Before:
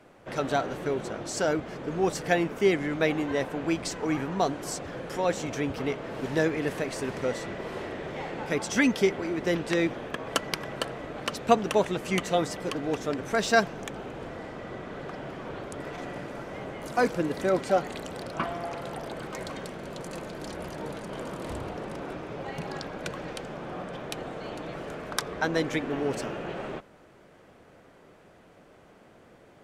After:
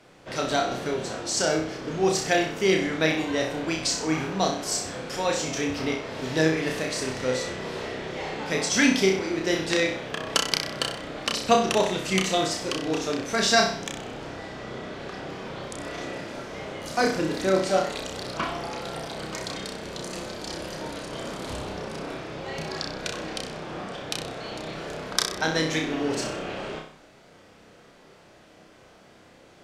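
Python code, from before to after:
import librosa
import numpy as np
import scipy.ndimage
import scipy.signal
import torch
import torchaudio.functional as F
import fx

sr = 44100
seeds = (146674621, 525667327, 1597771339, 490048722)

y = fx.peak_eq(x, sr, hz=4900.0, db=10.0, octaves=1.7)
y = fx.room_flutter(y, sr, wall_m=5.4, rt60_s=0.5)
y = y * librosa.db_to_amplitude(-1.0)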